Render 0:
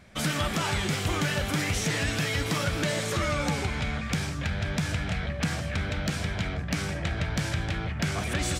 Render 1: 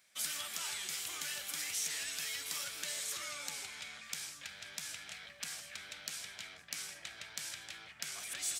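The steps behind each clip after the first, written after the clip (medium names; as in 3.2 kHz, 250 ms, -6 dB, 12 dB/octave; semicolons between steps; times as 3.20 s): differentiator; trim -2 dB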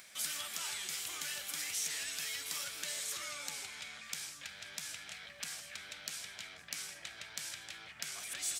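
upward compressor, threshold -45 dBFS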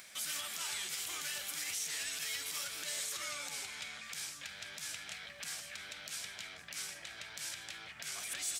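peak limiter -30.5 dBFS, peak gain reduction 10 dB; trim +2 dB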